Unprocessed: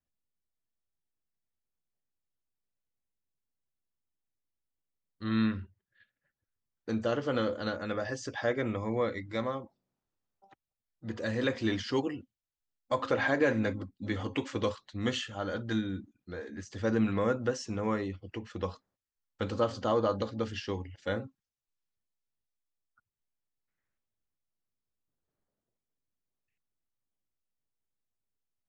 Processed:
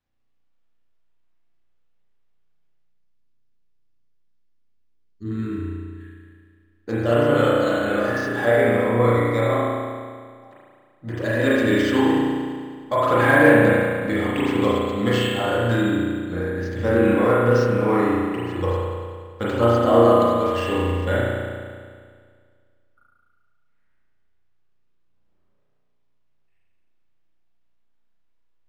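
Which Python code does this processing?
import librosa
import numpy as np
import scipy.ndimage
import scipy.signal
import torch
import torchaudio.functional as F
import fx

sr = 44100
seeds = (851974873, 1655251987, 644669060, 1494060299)

y = fx.spec_box(x, sr, start_s=2.75, length_s=2.85, low_hz=440.0, high_hz=4300.0, gain_db=-18)
y = fx.rev_spring(y, sr, rt60_s=1.9, pass_ms=(34,), chirp_ms=70, drr_db=-8.0)
y = np.interp(np.arange(len(y)), np.arange(len(y))[::4], y[::4])
y = y * librosa.db_to_amplitude(5.5)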